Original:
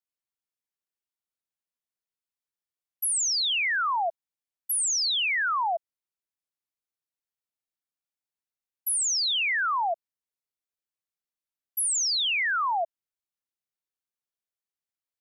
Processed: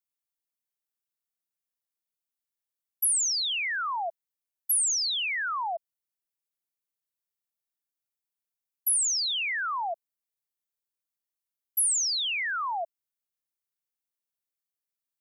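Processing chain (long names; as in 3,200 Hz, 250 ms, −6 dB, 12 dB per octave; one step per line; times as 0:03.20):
high-shelf EQ 8,200 Hz +10.5 dB
level −4.5 dB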